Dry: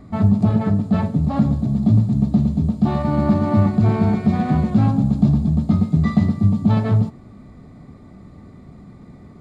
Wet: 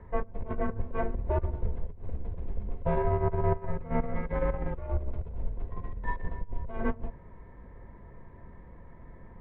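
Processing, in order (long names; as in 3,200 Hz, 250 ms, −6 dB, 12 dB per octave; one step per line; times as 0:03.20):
compressor whose output falls as the input rises −19 dBFS, ratio −0.5
single-sideband voice off tune −200 Hz 190–2,600 Hz
level −5 dB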